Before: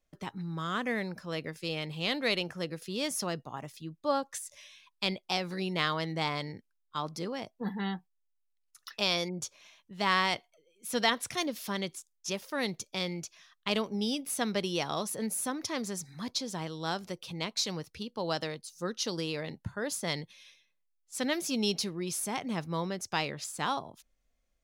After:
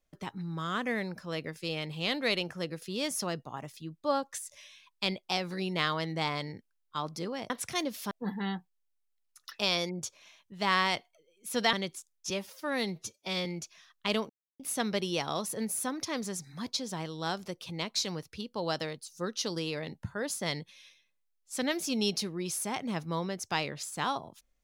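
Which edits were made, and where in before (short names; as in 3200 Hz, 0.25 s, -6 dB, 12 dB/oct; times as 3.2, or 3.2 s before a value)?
11.12–11.73 move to 7.5
12.3–13.07 stretch 1.5×
13.91–14.21 mute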